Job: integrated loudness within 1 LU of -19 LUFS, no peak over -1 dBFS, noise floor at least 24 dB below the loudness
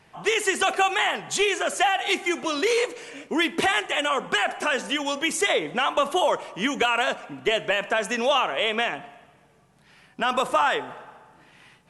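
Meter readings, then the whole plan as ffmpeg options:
loudness -23.5 LUFS; peak level -12.0 dBFS; loudness target -19.0 LUFS
-> -af "volume=1.68"

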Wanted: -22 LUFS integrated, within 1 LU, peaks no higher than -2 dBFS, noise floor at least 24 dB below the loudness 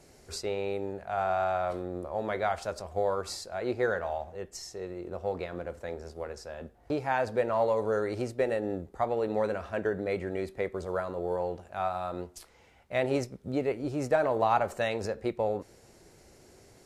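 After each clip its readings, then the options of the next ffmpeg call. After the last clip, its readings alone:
loudness -32.0 LUFS; peak level -12.5 dBFS; loudness target -22.0 LUFS
-> -af "volume=3.16"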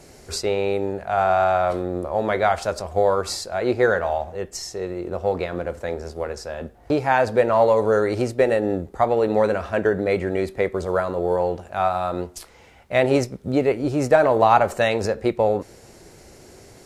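loudness -22.0 LUFS; peak level -2.5 dBFS; noise floor -49 dBFS

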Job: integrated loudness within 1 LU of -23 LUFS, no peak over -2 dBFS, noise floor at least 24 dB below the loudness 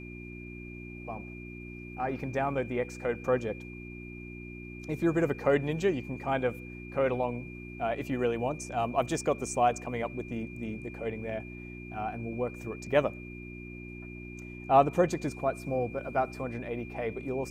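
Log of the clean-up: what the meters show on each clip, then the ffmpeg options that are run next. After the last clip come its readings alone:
hum 60 Hz; highest harmonic 360 Hz; hum level -41 dBFS; steady tone 2.4 kHz; tone level -47 dBFS; loudness -31.5 LUFS; peak level -9.0 dBFS; loudness target -23.0 LUFS
-> -af "bandreject=f=60:t=h:w=4,bandreject=f=120:t=h:w=4,bandreject=f=180:t=h:w=4,bandreject=f=240:t=h:w=4,bandreject=f=300:t=h:w=4,bandreject=f=360:t=h:w=4"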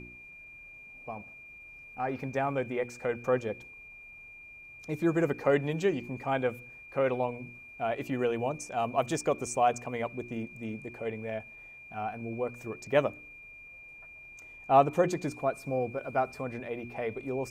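hum not found; steady tone 2.4 kHz; tone level -47 dBFS
-> -af "bandreject=f=2400:w=30"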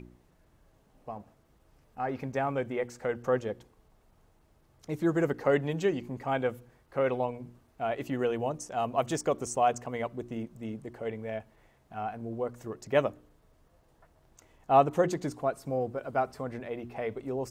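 steady tone not found; loudness -31.5 LUFS; peak level -9.5 dBFS; loudness target -23.0 LUFS
-> -af "volume=2.66,alimiter=limit=0.794:level=0:latency=1"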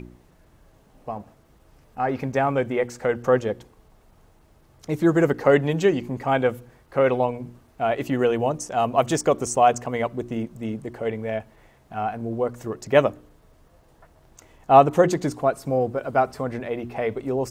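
loudness -23.0 LUFS; peak level -2.0 dBFS; noise floor -57 dBFS

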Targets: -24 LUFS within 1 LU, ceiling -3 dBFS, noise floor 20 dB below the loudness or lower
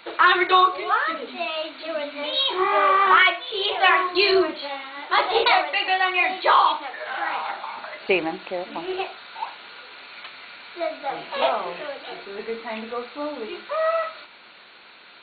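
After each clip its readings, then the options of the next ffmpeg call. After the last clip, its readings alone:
loudness -21.5 LUFS; peak level -4.0 dBFS; loudness target -24.0 LUFS
-> -af "volume=0.75"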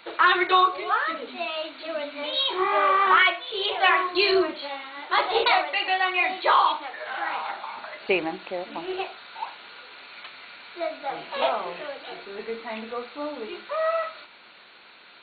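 loudness -24.0 LUFS; peak level -6.5 dBFS; noise floor -50 dBFS

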